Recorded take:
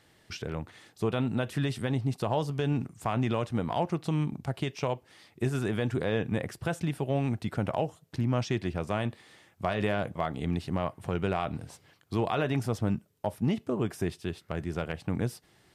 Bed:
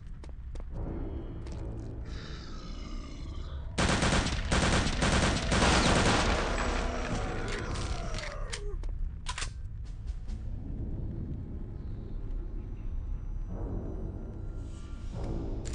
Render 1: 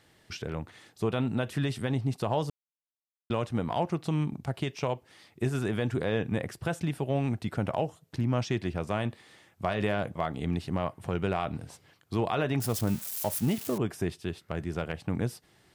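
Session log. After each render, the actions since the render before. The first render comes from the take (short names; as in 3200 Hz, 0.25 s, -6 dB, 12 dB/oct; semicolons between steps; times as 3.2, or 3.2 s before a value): 2.5–3.3 mute; 12.6–13.78 switching spikes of -27.5 dBFS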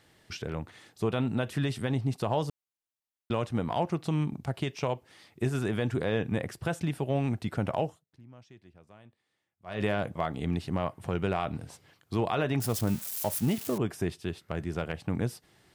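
7.86–9.83 dip -24 dB, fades 0.18 s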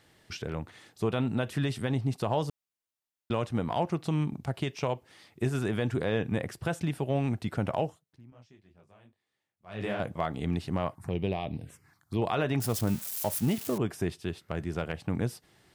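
8.3–10 detuned doubles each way 59 cents; 10.95–12.22 envelope phaser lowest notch 420 Hz, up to 1400 Hz, full sweep at -30.5 dBFS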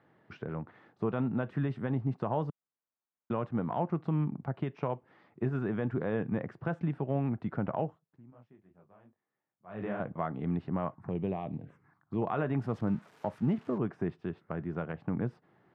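Chebyshev band-pass 150–1300 Hz, order 2; dynamic EQ 640 Hz, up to -3 dB, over -40 dBFS, Q 0.74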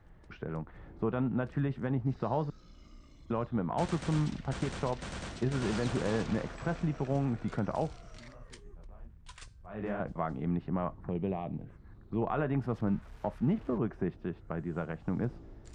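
add bed -14.5 dB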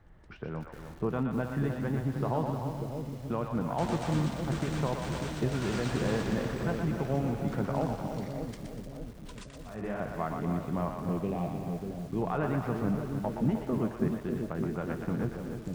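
on a send: split-band echo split 570 Hz, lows 0.59 s, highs 0.121 s, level -5 dB; on the sum: lo-fi delay 0.306 s, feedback 35%, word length 8-bit, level -8 dB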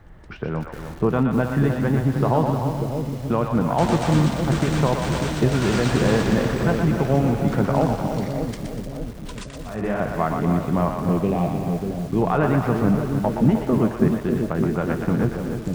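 gain +11 dB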